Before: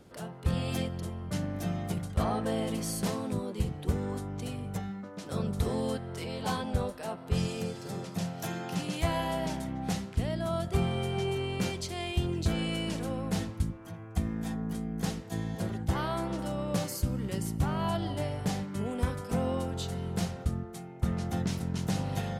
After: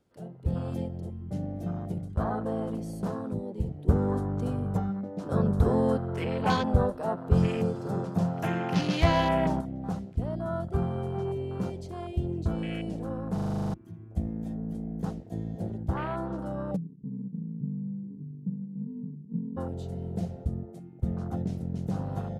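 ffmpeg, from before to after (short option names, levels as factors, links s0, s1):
-filter_complex "[0:a]asettb=1/sr,asplit=3[s0][s1][s2];[s0]atrim=end=3.884[s3];[s1]atrim=start=3.88:end=9.61,asetpts=PTS-STARTPTS,afade=t=in:d=0.004:c=qsin,afade=t=out:st=5.726:d=0.004:c=qsin,acontrast=83[s4];[s2]atrim=start=9.606[s5];[s3][s4]acrossfade=d=0.004:c1=hsin:c2=qsin[s6];[s6][s5]acrossfade=d=0.004:c1=qsin:c2=hsin,asplit=3[s7][s8][s9];[s7]afade=t=out:st=16.75:d=0.02[s10];[s8]asuperpass=centerf=190:order=8:qfactor=1.6,afade=t=in:st=16.75:d=0.02,afade=t=out:st=19.56:d=0.02[s11];[s9]afade=t=in:st=19.56:d=0.02[s12];[s10][s11][s12]amix=inputs=3:normalize=0,asplit=11[s13][s14][s15][s16][s17][s18][s19][s20][s21][s22][s23];[s13]atrim=end=13.382[s24];[s14]atrim=start=13.338:end=13.382[s25];[s15]atrim=start=13.338:end=13.382[s26];[s16]atrim=start=13.338:end=13.382[s27];[s17]atrim=start=13.338:end=13.382[s28];[s18]atrim=start=13.338:end=13.382[s29];[s19]atrim=start=13.338:end=13.382[s30];[s20]atrim=start=13.338:end=13.382[s31];[s21]atrim=start=13.338:end=13.382[s32];[s22]atrim=start=13.338:end=13.382[s33];[s23]atrim=start=13.738[s34];[s24][s25]acrossfade=d=0.004:c1=hsin:c2=hsin[s35];[s35][s26]acrossfade=d=0.004:c1=hsin:c2=hsin[s36];[s36][s27]acrossfade=d=0.004:c1=hsin:c2=hsin[s37];[s37][s28]acrossfade=d=0.004:c1=hsin:c2=hsin[s38];[s38][s29]acrossfade=d=0.004:c1=hsin:c2=hsin[s39];[s39][s30]acrossfade=d=0.004:c1=hsin:c2=hsin[s40];[s40][s31]acrossfade=d=0.004:c1=hsin:c2=hsin[s41];[s41][s32]acrossfade=d=0.004:c1=hsin:c2=hsin[s42];[s42][s33]acrossfade=d=0.004:c1=hsin:c2=hsin[s43];[s43][s34]acrossfade=d=0.004:c1=hsin:c2=hsin,afwtdn=0.0158"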